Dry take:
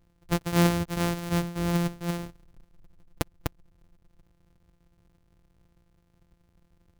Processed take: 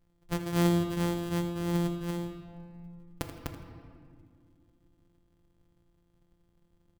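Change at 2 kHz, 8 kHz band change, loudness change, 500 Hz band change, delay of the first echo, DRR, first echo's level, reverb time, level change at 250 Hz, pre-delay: -6.5 dB, -6.0 dB, -3.0 dB, -2.0 dB, 81 ms, 3.5 dB, -12.0 dB, 2.2 s, -2.0 dB, 4 ms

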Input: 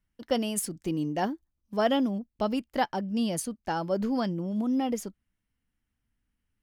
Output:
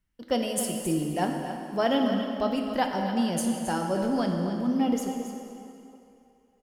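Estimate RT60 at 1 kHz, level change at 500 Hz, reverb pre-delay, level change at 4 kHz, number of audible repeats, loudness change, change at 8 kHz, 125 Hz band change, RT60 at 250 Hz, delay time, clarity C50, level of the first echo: 2.8 s, +2.0 dB, 3 ms, +2.0 dB, 1, +2.0 dB, +2.0 dB, +2.5 dB, 2.4 s, 271 ms, 2.5 dB, -10.5 dB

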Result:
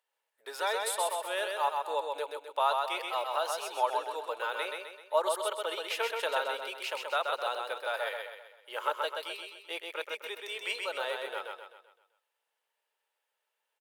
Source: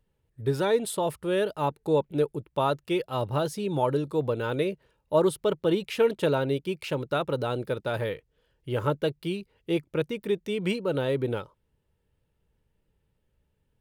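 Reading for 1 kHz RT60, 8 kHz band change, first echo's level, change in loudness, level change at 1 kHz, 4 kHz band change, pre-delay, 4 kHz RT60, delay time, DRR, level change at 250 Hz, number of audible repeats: no reverb, +2.0 dB, -4.0 dB, -5.0 dB, +1.0 dB, +1.5 dB, no reverb, no reverb, 129 ms, no reverb, -25.5 dB, 5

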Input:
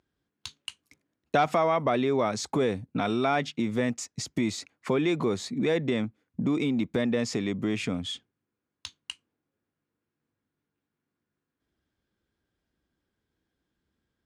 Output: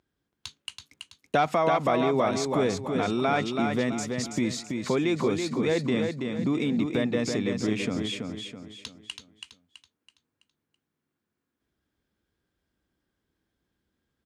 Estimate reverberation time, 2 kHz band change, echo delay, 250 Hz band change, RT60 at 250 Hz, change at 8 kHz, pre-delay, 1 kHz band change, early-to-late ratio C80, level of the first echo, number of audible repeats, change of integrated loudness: no reverb, +1.5 dB, 329 ms, +1.5 dB, no reverb, +1.5 dB, no reverb, +1.5 dB, no reverb, -5.0 dB, 4, +1.0 dB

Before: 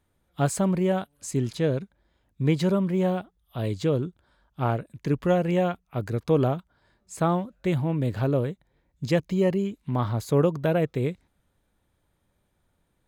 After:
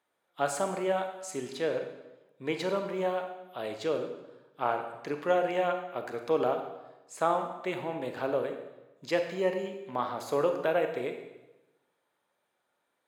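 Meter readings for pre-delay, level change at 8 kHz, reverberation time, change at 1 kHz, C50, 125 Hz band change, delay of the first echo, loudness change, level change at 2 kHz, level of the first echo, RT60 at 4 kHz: 29 ms, -5.0 dB, 1.0 s, 0.0 dB, 7.0 dB, -20.5 dB, no echo, -5.5 dB, 0.0 dB, no echo, 0.85 s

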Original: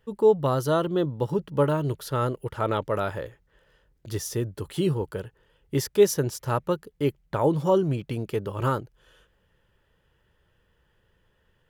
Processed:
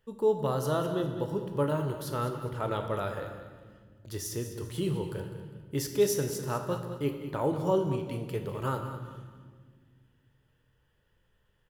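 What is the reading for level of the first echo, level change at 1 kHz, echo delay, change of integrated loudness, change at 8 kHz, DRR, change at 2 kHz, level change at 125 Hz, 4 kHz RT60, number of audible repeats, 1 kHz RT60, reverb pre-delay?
-12.0 dB, -5.5 dB, 202 ms, -5.5 dB, -3.0 dB, 4.5 dB, -5.0 dB, -5.0 dB, 1.3 s, 3, 1.5 s, 21 ms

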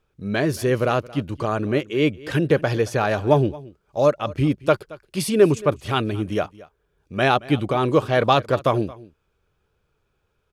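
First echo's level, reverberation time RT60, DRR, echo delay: -20.5 dB, no reverb, no reverb, 224 ms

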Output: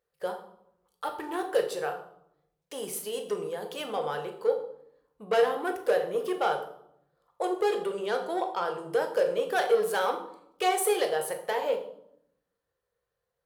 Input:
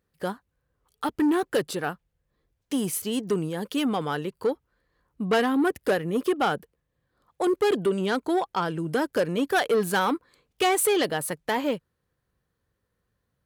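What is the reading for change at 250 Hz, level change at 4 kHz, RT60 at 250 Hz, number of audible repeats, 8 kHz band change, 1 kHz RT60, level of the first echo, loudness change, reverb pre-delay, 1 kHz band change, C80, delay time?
-13.0 dB, -5.0 dB, 1.1 s, no echo, -5.5 dB, 0.70 s, no echo, -3.5 dB, 6 ms, -2.0 dB, 12.5 dB, no echo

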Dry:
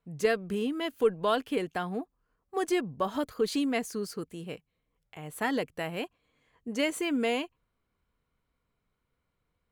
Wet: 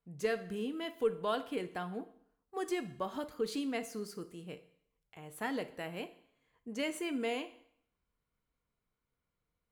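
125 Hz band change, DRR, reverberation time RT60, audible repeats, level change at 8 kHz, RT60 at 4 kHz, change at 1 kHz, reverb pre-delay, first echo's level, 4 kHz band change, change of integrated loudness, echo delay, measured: -7.0 dB, 10.5 dB, 0.65 s, no echo, -7.0 dB, 0.60 s, -7.0 dB, 4 ms, no echo, -7.0 dB, -7.0 dB, no echo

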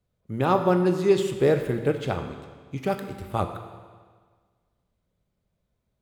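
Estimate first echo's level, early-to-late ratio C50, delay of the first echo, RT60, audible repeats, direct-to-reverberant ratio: no echo, 8.0 dB, no echo, 1.6 s, no echo, 6.0 dB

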